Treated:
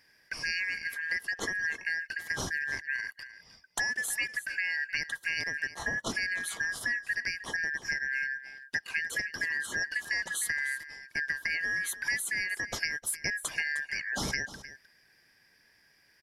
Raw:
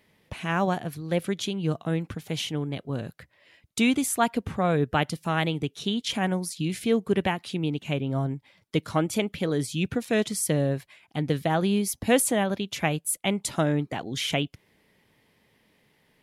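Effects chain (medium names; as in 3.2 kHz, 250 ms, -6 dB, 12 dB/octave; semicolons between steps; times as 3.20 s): four frequency bands reordered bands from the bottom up 3142; compression, threshold -29 dBFS, peak gain reduction 13.5 dB; delay 308 ms -14.5 dB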